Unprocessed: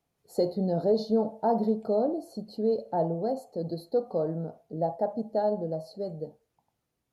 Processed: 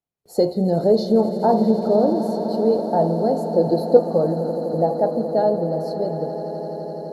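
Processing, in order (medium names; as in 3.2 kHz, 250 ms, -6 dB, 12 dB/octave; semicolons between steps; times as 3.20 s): 3.52–3.97 s: peaking EQ 630 Hz +8.5 dB 2.9 oct; echo with a slow build-up 84 ms, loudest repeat 8, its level -16 dB; gate with hold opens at -53 dBFS; trim +8 dB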